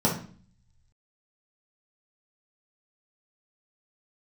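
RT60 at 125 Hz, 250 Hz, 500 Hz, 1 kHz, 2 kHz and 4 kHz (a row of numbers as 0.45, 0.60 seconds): 1.3, 0.75, 0.45, 0.45, 0.40, 0.40 seconds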